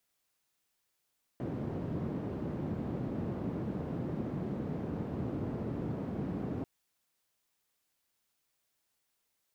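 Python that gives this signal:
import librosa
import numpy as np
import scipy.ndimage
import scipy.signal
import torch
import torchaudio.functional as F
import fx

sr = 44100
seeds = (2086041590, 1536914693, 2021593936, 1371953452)

y = fx.band_noise(sr, seeds[0], length_s=5.24, low_hz=110.0, high_hz=240.0, level_db=-36.5)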